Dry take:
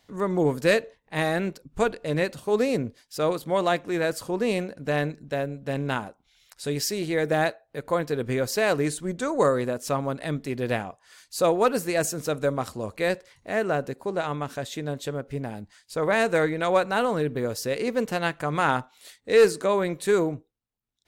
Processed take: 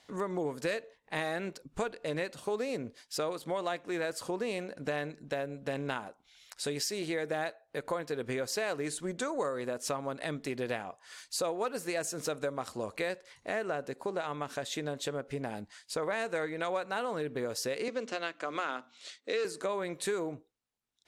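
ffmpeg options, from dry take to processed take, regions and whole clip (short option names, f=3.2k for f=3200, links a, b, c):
-filter_complex "[0:a]asettb=1/sr,asplit=3[a][b][c];[a]atrim=end=17.884[d];[b]atrim=start=17.88:end=19.45,asetpts=PTS-STARTPTS,afade=t=in:d=0.004:c=qsin,afade=t=out:st=1.566:d=0.004:c=qsin,bandreject=f=60:t=h:w=6,bandreject=f=120:t=h:w=6,bandreject=f=180:t=h:w=6,bandreject=f=240:t=h:w=6,bandreject=f=300:t=h:w=6,acrusher=bits=9:mode=log:mix=0:aa=0.000001,highpass=f=230:w=0.5412,highpass=f=230:w=1.3066,equalizer=f=440:t=q:w=4:g=-3,equalizer=f=860:t=q:w=4:g=-10,equalizer=f=1.8k:t=q:w=4:g=-4,lowpass=f=7.1k:w=0.5412,lowpass=f=7.1k:w=1.3066[e];[c]atrim=start=19.446[f];[d][e]acrossfade=d=0.004:c1=hsin:c2=qsin[g];[g][f]acrossfade=d=0.004:c1=qsin:c2=hsin,lowpass=11k,lowshelf=f=200:g=-12,acompressor=threshold=-35dB:ratio=4,volume=2.5dB"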